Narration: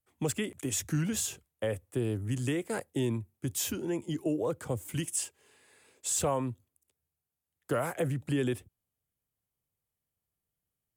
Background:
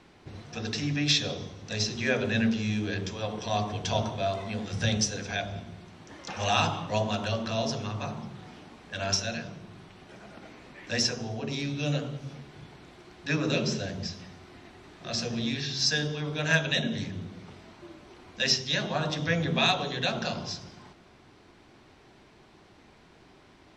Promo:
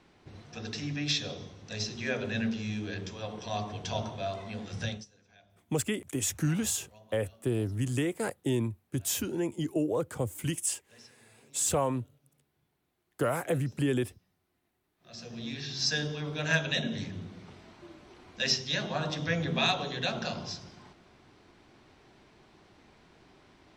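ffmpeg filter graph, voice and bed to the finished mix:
-filter_complex "[0:a]adelay=5500,volume=1.5dB[a];[1:a]volume=20.5dB,afade=t=out:st=4.82:d=0.23:silence=0.0668344,afade=t=in:st=14.96:d=0.95:silence=0.0501187[b];[a][b]amix=inputs=2:normalize=0"

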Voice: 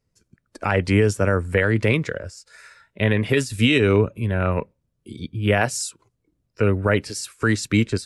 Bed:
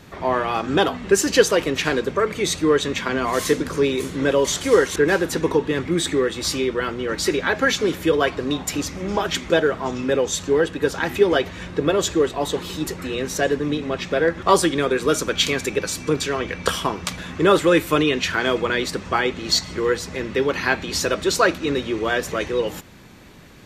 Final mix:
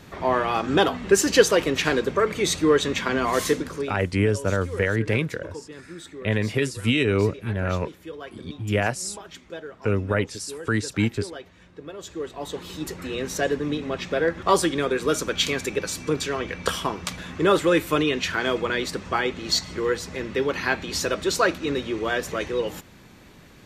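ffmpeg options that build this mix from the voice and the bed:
-filter_complex "[0:a]adelay=3250,volume=-4dB[a];[1:a]volume=14.5dB,afade=t=out:st=3.37:d=0.61:silence=0.125893,afade=t=in:st=11.97:d=1.19:silence=0.16788[b];[a][b]amix=inputs=2:normalize=0"

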